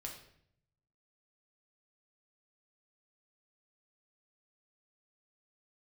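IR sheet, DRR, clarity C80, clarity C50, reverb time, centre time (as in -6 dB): -0.5 dB, 9.5 dB, 6.0 dB, 0.65 s, 28 ms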